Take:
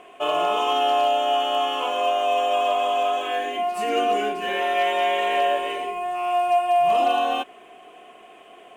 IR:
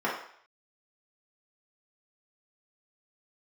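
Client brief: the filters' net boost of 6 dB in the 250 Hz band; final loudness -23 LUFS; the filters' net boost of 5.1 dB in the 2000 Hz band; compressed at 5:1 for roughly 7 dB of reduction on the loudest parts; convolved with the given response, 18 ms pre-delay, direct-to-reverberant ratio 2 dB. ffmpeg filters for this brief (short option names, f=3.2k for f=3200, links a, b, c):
-filter_complex "[0:a]equalizer=f=250:t=o:g=7.5,equalizer=f=2k:t=o:g=6.5,acompressor=threshold=-23dB:ratio=5,asplit=2[a][b];[1:a]atrim=start_sample=2205,adelay=18[c];[b][c]afir=irnorm=-1:irlink=0,volume=-13.5dB[d];[a][d]amix=inputs=2:normalize=0,volume=1.5dB"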